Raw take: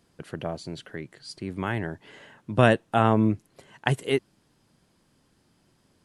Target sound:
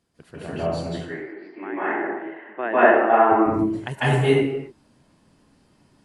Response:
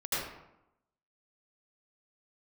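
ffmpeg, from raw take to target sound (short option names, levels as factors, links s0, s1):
-filter_complex "[0:a]asettb=1/sr,asplit=3[s0][s1][s2];[s0]atrim=end=0.914[s3];[s1]atrim=start=0.91:end=3.32,asetpts=PTS-STARTPTS,afade=t=in:d=0.004:c=qsin,afade=t=out:st=2.406:d=0.004:c=qsin,highpass=f=330:w=0.5412,highpass=f=330:w=1.3066,equalizer=f=350:t=q:w=4:g=6,equalizer=f=530:t=q:w=4:g=-6,equalizer=f=780:t=q:w=4:g=4,equalizer=f=1900:t=q:w=4:g=5,lowpass=f=2200:w=0.5412,lowpass=f=2200:w=1.3066[s4];[s2]atrim=start=3.316[s5];[s3][s4]acrossfade=d=0.004:c1=hsin:c2=qsin[s6];[s6][s5]acrossfade=d=0.004:c1=qsin:c2=hsin[s7];[1:a]atrim=start_sample=2205,afade=t=out:st=0.32:d=0.01,atrim=end_sample=14553,asetrate=22491,aresample=44100[s8];[s7][s8]afir=irnorm=-1:irlink=0,volume=0.501"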